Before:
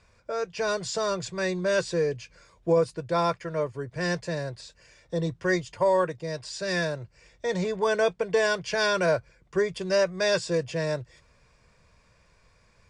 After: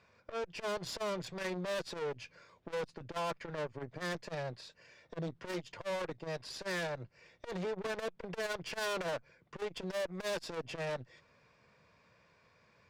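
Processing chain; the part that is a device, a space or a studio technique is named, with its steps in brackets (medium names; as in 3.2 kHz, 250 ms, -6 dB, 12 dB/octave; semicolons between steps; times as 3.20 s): valve radio (band-pass 140–4200 Hz; valve stage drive 34 dB, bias 0.65; transformer saturation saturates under 250 Hz); trim +1 dB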